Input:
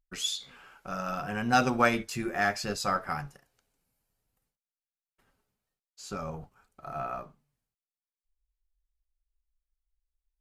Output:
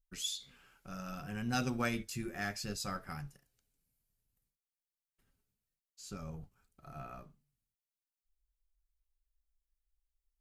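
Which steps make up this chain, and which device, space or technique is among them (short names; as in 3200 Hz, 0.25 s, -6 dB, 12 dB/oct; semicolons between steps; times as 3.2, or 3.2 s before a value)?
smiley-face EQ (low shelf 180 Hz +5.5 dB; bell 850 Hz -9 dB 2.1 oct; high shelf 8800 Hz +6 dB); gain -6.5 dB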